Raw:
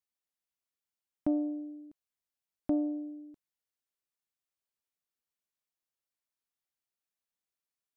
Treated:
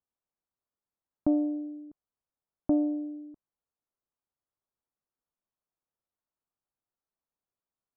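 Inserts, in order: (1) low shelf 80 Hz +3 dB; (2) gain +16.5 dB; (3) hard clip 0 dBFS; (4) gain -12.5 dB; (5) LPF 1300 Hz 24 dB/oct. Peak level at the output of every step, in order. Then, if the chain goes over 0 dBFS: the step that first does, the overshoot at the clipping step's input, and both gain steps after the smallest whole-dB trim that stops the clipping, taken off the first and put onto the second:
-20.5, -4.0, -4.0, -16.5, -16.5 dBFS; no overload

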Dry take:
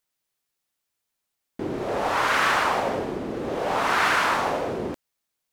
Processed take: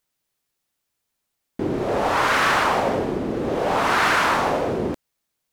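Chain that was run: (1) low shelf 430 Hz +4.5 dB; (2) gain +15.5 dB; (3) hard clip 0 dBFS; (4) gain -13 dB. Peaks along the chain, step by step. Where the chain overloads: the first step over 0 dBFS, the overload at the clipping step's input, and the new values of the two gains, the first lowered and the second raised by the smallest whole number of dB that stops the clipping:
-8.0, +7.5, 0.0, -13.0 dBFS; step 2, 7.5 dB; step 2 +7.5 dB, step 4 -5 dB

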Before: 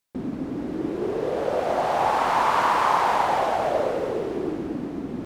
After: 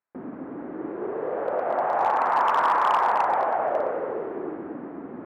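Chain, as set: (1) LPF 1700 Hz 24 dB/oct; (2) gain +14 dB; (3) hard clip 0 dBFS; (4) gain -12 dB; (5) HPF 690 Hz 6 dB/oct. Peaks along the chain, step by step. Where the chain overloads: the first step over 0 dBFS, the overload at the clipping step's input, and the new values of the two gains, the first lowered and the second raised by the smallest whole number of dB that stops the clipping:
-8.0, +6.0, 0.0, -12.0, -10.0 dBFS; step 2, 6.0 dB; step 2 +8 dB, step 4 -6 dB

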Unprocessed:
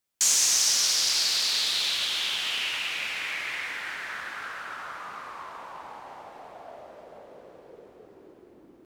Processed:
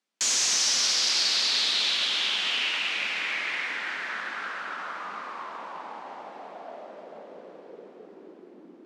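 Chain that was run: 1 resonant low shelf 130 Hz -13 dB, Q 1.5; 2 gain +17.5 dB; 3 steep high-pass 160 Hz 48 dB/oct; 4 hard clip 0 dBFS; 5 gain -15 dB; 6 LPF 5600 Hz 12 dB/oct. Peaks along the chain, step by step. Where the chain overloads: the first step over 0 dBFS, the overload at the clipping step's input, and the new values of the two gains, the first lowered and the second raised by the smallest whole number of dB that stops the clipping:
-8.5, +9.0, +9.0, 0.0, -15.0, -15.0 dBFS; step 2, 9.0 dB; step 2 +8.5 dB, step 5 -6 dB

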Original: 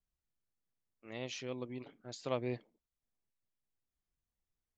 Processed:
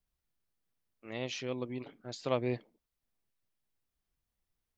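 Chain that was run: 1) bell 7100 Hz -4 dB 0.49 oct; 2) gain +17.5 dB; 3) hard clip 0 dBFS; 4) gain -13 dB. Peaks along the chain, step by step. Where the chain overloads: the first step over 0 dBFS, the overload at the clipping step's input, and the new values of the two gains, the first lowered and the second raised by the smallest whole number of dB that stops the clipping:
-19.5, -2.0, -2.0, -15.0 dBFS; no overload

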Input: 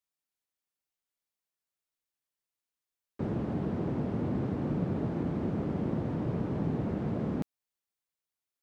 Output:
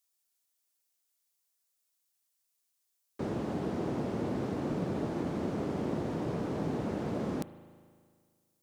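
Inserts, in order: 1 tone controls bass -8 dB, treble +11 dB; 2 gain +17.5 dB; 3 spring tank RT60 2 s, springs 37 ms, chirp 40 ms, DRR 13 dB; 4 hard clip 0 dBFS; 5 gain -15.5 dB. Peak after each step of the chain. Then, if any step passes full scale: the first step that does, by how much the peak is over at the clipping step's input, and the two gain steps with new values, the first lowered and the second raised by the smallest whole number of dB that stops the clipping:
-20.0, -2.5, -2.0, -2.0, -17.5 dBFS; no overload

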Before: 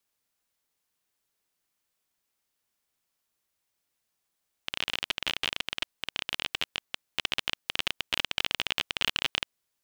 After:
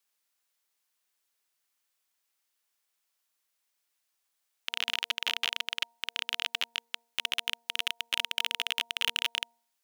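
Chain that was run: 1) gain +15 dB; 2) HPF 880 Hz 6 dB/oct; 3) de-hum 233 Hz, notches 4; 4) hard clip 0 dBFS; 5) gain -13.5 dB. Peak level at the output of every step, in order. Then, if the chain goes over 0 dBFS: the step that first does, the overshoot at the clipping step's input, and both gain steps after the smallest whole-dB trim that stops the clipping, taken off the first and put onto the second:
+8.0, +6.5, +6.5, 0.0, -13.5 dBFS; step 1, 6.5 dB; step 1 +8 dB, step 5 -6.5 dB

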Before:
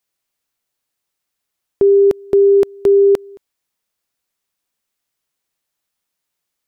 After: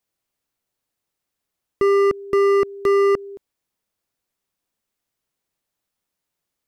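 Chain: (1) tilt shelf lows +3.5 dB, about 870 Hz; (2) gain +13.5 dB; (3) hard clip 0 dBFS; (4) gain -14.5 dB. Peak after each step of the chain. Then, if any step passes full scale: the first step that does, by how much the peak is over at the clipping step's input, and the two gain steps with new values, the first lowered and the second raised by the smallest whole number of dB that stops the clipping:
-4.0, +9.5, 0.0, -14.5 dBFS; step 2, 9.5 dB; step 2 +3.5 dB, step 4 -4.5 dB

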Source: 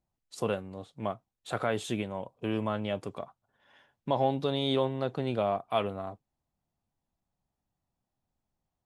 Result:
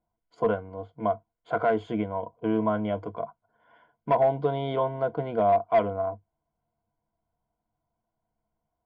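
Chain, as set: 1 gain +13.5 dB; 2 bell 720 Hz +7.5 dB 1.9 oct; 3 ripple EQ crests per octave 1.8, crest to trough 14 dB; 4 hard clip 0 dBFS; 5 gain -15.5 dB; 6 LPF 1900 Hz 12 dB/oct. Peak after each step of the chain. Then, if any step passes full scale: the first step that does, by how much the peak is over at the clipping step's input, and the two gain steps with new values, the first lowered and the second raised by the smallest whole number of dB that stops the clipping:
-1.0, +4.0, +8.5, 0.0, -15.5, -15.0 dBFS; step 2, 8.5 dB; step 1 +4.5 dB, step 5 -6.5 dB

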